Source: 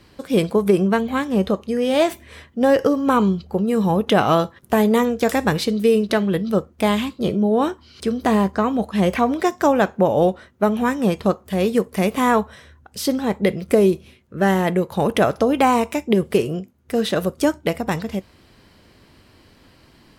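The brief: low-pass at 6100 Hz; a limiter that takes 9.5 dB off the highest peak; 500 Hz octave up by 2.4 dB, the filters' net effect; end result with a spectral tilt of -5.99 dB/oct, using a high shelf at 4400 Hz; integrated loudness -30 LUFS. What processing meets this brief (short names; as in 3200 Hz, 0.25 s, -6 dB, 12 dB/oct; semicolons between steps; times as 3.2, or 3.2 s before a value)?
LPF 6100 Hz; bell 500 Hz +3 dB; high shelf 4400 Hz -6 dB; gain -9 dB; limiter -19 dBFS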